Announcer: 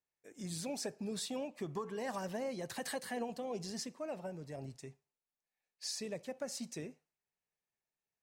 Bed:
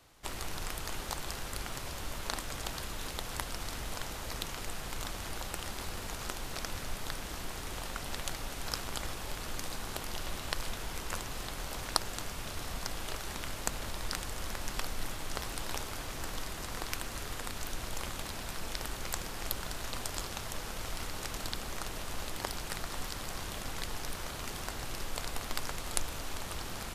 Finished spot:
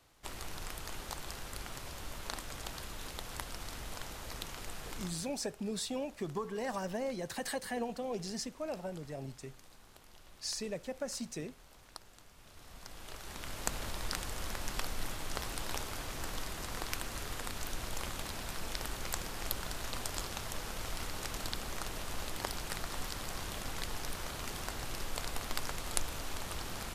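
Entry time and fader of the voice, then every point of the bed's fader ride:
4.60 s, +2.5 dB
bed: 4.96 s -4.5 dB
5.42 s -19.5 dB
12.3 s -19.5 dB
13.69 s -1 dB

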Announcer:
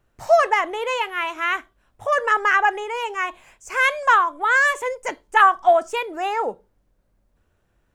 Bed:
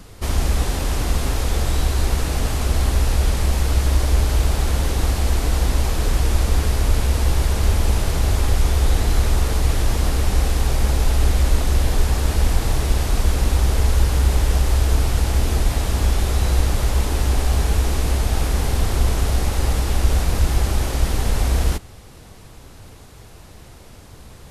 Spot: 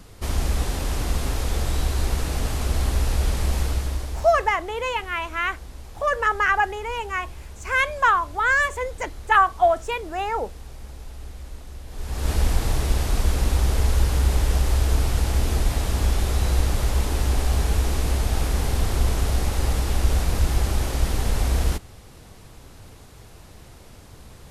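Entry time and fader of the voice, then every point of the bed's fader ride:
3.95 s, -2.5 dB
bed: 3.62 s -4 dB
4.58 s -21 dB
11.86 s -21 dB
12.3 s -3 dB

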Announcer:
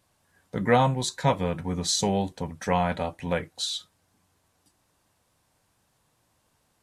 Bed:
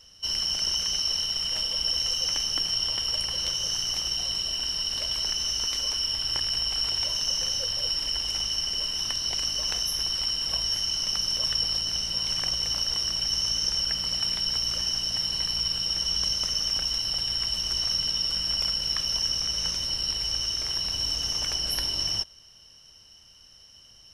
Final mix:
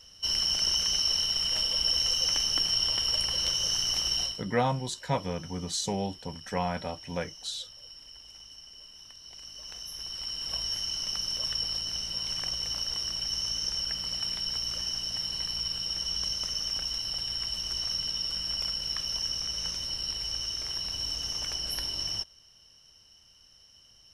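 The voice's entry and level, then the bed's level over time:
3.85 s, -6.0 dB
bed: 4.24 s 0 dB
4.46 s -20.5 dB
9.17 s -20.5 dB
10.57 s -5 dB

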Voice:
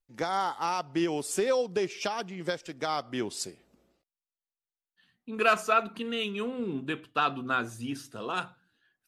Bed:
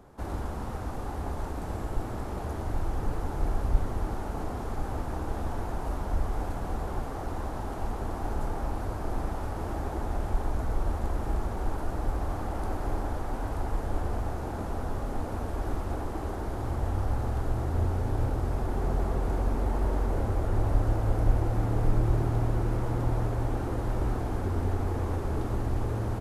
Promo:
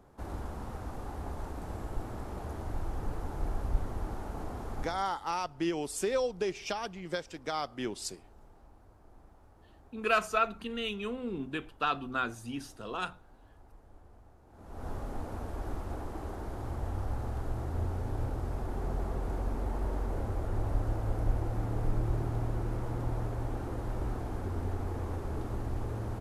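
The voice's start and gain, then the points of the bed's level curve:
4.65 s, -3.5 dB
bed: 4.82 s -5.5 dB
5.16 s -26 dB
14.46 s -26 dB
14.87 s -6 dB

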